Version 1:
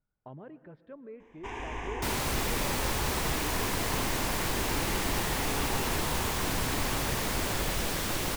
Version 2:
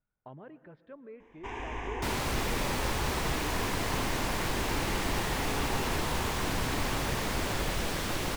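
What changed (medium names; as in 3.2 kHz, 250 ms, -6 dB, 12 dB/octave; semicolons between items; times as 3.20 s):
speech: add tilt shelf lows -3 dB, about 870 Hz; master: add treble shelf 7.3 kHz -8 dB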